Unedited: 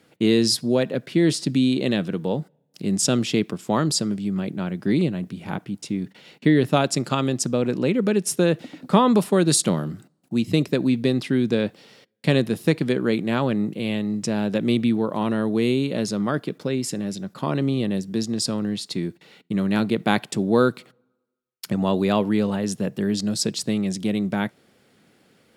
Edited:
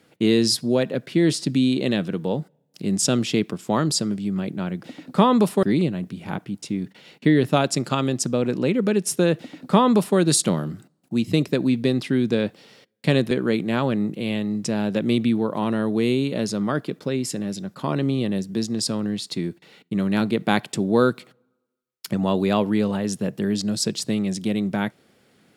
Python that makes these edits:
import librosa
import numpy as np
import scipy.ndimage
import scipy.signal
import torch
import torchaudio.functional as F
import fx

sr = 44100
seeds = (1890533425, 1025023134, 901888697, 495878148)

y = fx.edit(x, sr, fx.duplicate(start_s=8.58, length_s=0.8, to_s=4.83),
    fx.cut(start_s=12.51, length_s=0.39), tone=tone)